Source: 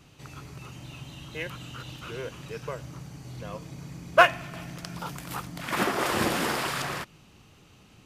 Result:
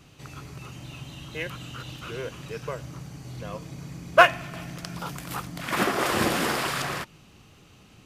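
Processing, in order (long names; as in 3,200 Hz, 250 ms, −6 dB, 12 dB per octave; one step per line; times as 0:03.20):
notch filter 900 Hz, Q 24
level +2 dB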